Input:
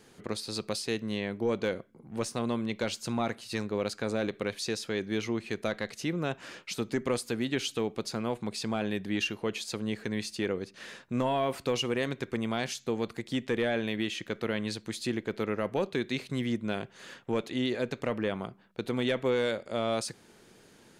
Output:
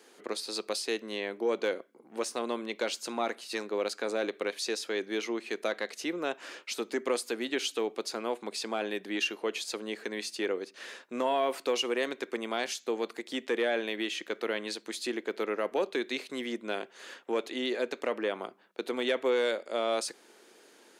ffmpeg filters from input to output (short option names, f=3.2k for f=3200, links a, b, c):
-af "highpass=f=300:w=0.5412,highpass=f=300:w=1.3066,volume=1dB"